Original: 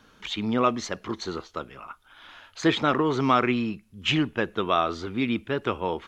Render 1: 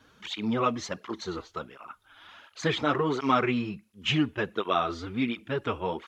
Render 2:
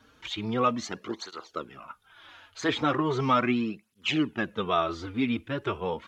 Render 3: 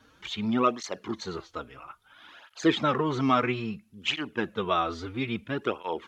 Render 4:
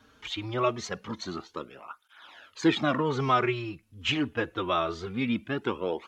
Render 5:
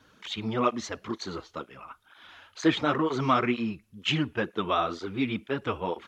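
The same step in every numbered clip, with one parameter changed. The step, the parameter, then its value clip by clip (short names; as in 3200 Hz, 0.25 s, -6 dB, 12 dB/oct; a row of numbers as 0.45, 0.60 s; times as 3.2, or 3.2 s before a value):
tape flanging out of phase, nulls at: 1.4, 0.38, 0.6, 0.24, 2.1 Hz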